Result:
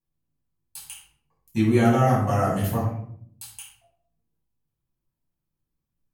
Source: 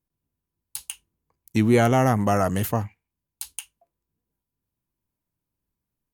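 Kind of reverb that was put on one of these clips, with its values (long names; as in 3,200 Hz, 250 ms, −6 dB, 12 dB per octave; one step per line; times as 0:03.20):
rectangular room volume 890 cubic metres, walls furnished, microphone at 8.9 metres
level −12.5 dB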